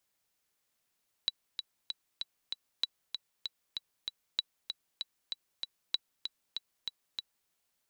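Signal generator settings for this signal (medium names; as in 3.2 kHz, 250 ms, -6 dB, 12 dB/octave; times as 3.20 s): metronome 193 bpm, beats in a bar 5, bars 4, 3.93 kHz, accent 7 dB -15.5 dBFS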